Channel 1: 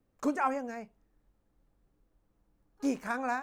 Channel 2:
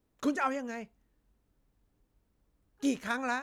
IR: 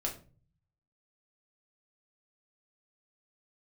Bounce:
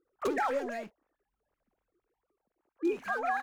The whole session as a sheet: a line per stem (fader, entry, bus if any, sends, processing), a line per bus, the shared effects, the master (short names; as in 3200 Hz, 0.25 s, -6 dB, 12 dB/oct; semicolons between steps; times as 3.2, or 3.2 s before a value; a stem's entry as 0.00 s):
+2.5 dB, 0.00 s, no send, sine-wave speech
-5.5 dB, 25 ms, polarity flipped, no send, compressor, threshold -30 dBFS, peak gain reduction 6.5 dB; sample leveller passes 5; auto duck -16 dB, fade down 1.05 s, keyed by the first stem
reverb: off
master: limiter -22 dBFS, peak gain reduction 7.5 dB